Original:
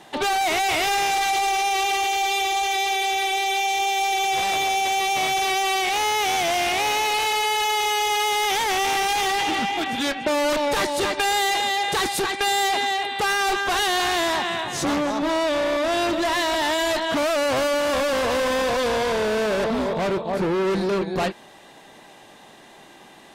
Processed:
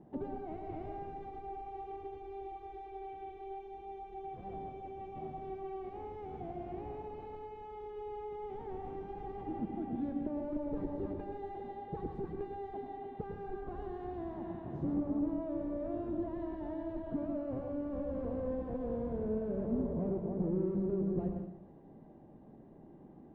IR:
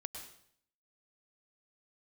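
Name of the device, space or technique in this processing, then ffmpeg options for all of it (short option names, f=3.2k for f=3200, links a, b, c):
television next door: -filter_complex "[0:a]acompressor=threshold=-28dB:ratio=6,lowpass=270[a];[1:a]atrim=start_sample=2205[b];[a][b]afir=irnorm=-1:irlink=0,volume=4dB"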